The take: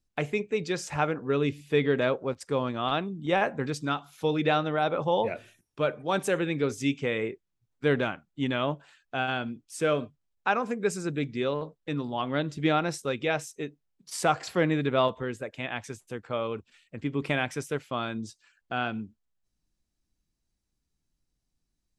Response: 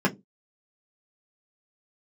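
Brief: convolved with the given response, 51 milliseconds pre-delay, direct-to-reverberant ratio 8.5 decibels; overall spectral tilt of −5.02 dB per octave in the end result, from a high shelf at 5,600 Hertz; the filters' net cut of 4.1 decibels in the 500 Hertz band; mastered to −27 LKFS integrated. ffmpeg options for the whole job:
-filter_complex "[0:a]equalizer=frequency=500:width_type=o:gain=-5,highshelf=frequency=5600:gain=-5,asplit=2[link_01][link_02];[1:a]atrim=start_sample=2205,adelay=51[link_03];[link_02][link_03]afir=irnorm=-1:irlink=0,volume=-22dB[link_04];[link_01][link_04]amix=inputs=2:normalize=0,volume=3dB"

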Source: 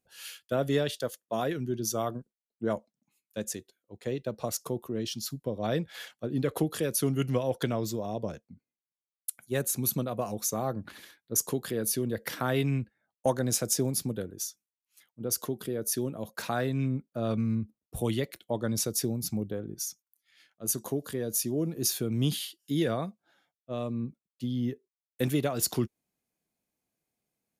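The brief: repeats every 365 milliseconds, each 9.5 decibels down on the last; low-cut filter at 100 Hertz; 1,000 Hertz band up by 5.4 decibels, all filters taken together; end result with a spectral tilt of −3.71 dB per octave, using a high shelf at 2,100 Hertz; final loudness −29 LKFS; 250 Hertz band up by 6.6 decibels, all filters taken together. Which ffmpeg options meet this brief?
ffmpeg -i in.wav -af "highpass=100,equalizer=frequency=250:width_type=o:gain=7.5,equalizer=frequency=1000:width_type=o:gain=5.5,highshelf=frequency=2100:gain=7,aecho=1:1:365|730|1095|1460:0.335|0.111|0.0365|0.012,volume=-3dB" out.wav

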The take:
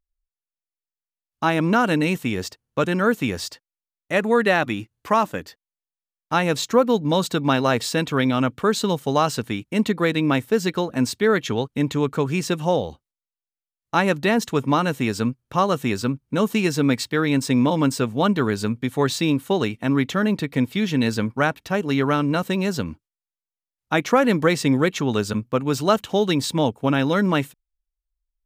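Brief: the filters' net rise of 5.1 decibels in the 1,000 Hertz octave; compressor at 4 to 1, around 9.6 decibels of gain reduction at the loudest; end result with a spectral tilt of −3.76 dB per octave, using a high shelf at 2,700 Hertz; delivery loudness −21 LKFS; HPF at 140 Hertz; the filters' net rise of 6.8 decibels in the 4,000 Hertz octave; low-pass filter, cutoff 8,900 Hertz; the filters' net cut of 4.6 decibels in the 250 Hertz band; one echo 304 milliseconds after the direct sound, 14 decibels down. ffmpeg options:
ffmpeg -i in.wav -af "highpass=140,lowpass=8900,equalizer=frequency=250:width_type=o:gain=-5.5,equalizer=frequency=1000:width_type=o:gain=6,highshelf=frequency=2700:gain=3,equalizer=frequency=4000:width_type=o:gain=5.5,acompressor=threshold=-21dB:ratio=4,aecho=1:1:304:0.2,volume=5dB" out.wav

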